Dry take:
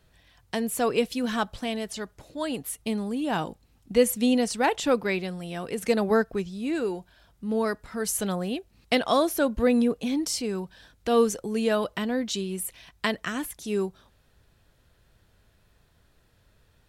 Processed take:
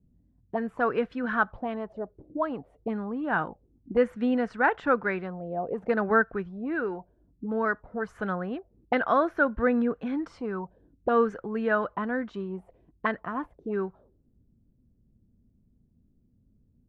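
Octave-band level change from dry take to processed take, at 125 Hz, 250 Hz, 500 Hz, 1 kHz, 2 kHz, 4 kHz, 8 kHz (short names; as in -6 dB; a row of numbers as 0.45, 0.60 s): -3.0 dB, -3.0 dB, -2.0 dB, +2.0 dB, +3.5 dB, -17.0 dB, under -30 dB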